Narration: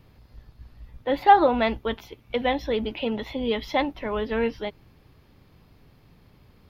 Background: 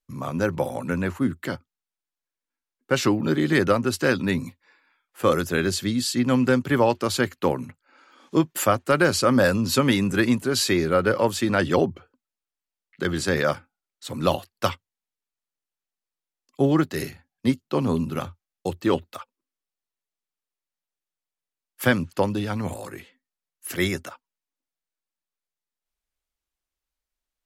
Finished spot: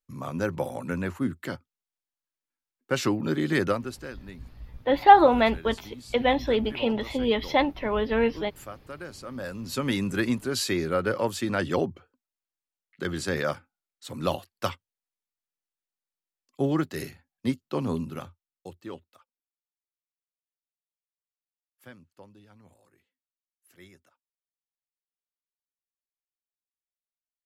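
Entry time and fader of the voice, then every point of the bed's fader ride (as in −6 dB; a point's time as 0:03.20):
3.80 s, +1.5 dB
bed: 0:03.68 −4.5 dB
0:04.15 −21 dB
0:09.25 −21 dB
0:09.96 −5.5 dB
0:17.94 −5.5 dB
0:19.70 −28 dB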